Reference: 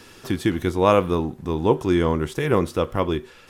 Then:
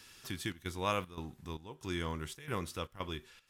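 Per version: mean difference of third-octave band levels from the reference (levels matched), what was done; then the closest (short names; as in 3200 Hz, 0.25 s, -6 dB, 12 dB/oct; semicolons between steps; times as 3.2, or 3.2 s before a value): 6.0 dB: passive tone stack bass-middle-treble 5-5-5; step gate "xxxx.xxx.xxx.." 115 bpm -12 dB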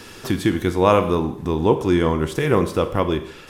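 2.5 dB: in parallel at 0 dB: compressor, threshold -30 dBFS, peak gain reduction 17.5 dB; on the sum: Schroeder reverb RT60 0.68 s, combs from 30 ms, DRR 10.5 dB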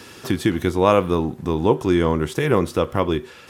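1.5 dB: HPF 68 Hz; in parallel at 0 dB: compressor, threshold -25 dBFS, peak gain reduction 13.5 dB; on the sum: gain -1 dB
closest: third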